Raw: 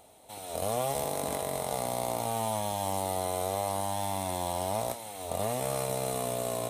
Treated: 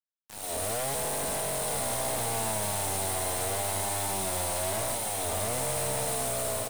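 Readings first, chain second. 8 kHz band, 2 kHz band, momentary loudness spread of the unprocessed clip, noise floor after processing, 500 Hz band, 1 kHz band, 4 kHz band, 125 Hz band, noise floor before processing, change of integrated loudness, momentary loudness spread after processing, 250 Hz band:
+7.5 dB, +6.5 dB, 4 LU, -44 dBFS, -1.0 dB, -1.5 dB, +4.5 dB, +0.5 dB, -43 dBFS, +3.0 dB, 1 LU, -1.5 dB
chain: bell 9300 Hz +7.5 dB 0.6 oct; AGC gain up to 10 dB; tube stage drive 26 dB, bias 0.65; hard clip -33 dBFS, distortion -9 dB; bit-crush 6-bit; on a send: echo 1.196 s -7.5 dB

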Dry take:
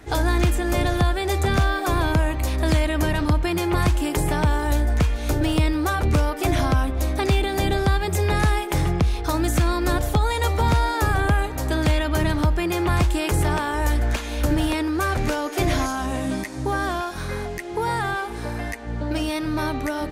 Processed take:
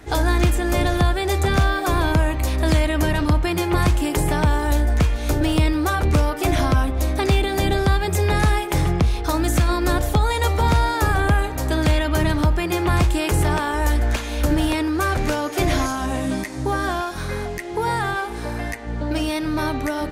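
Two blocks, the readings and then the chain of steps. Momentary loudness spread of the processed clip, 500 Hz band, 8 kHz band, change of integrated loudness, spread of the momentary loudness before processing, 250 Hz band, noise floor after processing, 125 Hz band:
6 LU, +2.0 dB, +2.0 dB, +2.0 dB, 5 LU, +2.0 dB, -29 dBFS, +2.0 dB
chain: de-hum 113.2 Hz, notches 27; gain +2 dB

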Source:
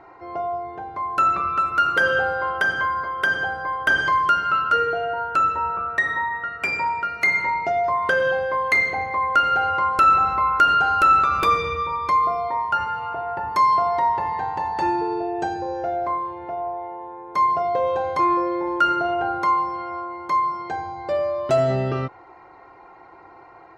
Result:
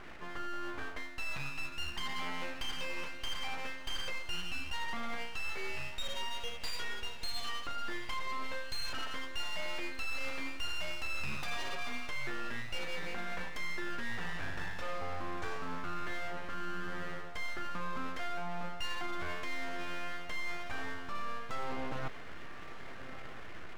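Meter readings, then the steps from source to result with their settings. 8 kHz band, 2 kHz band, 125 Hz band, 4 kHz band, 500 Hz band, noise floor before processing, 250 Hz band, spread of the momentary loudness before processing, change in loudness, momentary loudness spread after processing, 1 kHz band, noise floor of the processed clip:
n/a, -16.0 dB, -13.5 dB, -4.5 dB, -20.5 dB, -47 dBFS, -14.0 dB, 11 LU, -19.0 dB, 4 LU, -23.5 dB, -41 dBFS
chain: dynamic EQ 1000 Hz, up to -5 dB, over -32 dBFS, Q 2.9; reverse; compressor 6:1, threshold -34 dBFS, peak gain reduction 19.5 dB; reverse; full-wave rectifier; diffused feedback echo 1.321 s, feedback 49%, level -14 dB

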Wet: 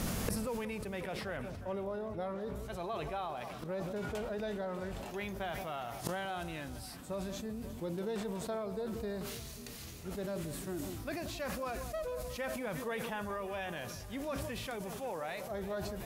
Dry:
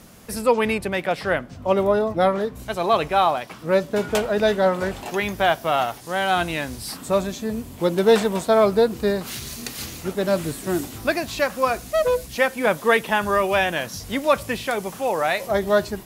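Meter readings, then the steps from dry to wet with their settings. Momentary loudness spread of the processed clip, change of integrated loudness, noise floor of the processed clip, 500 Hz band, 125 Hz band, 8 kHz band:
4 LU, -17.5 dB, -46 dBFS, -18.5 dB, -10.5 dB, -12.5 dB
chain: harmonic-percussive split harmonic +4 dB; low shelf 100 Hz +9 dB; compressor 8:1, threshold -17 dBFS, peak gain reduction 11 dB; flipped gate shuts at -27 dBFS, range -25 dB; echo with dull and thin repeats by turns 0.18 s, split 1200 Hz, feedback 73%, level -13 dB; sustainer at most 22 dB/s; gain +6 dB

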